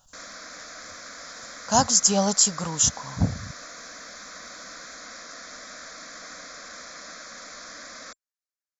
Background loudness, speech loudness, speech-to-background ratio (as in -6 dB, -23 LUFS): -40.0 LUFS, -21.0 LUFS, 19.0 dB